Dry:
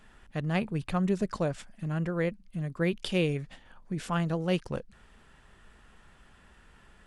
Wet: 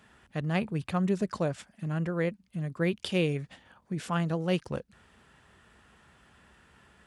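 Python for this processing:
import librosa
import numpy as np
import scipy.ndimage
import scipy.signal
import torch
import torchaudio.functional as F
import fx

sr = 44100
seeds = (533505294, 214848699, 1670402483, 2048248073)

y = scipy.signal.sosfilt(scipy.signal.butter(4, 63.0, 'highpass', fs=sr, output='sos'), x)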